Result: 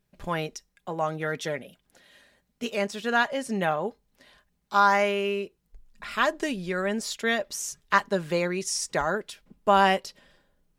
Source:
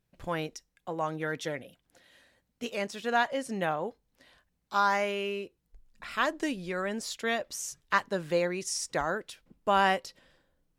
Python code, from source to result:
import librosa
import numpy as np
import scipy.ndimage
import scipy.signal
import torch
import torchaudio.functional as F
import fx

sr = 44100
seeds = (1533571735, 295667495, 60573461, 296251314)

y = x + 0.36 * np.pad(x, (int(4.9 * sr / 1000.0), 0))[:len(x)]
y = F.gain(torch.from_numpy(y), 3.5).numpy()